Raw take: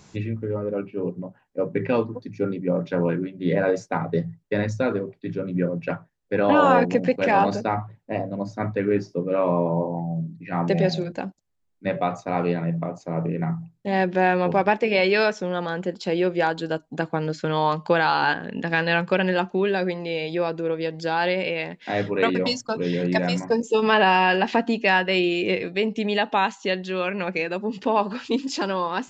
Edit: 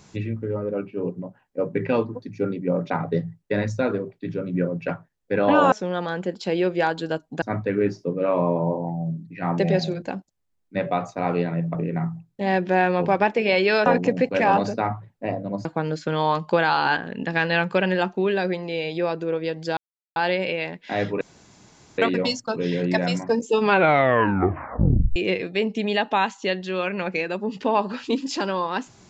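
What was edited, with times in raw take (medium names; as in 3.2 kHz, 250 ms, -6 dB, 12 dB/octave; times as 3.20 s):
2.90–3.91 s: delete
6.73–8.52 s: swap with 15.32–17.02 s
12.85–13.21 s: delete
21.14 s: insert silence 0.39 s
22.19 s: insert room tone 0.77 s
23.81 s: tape stop 1.56 s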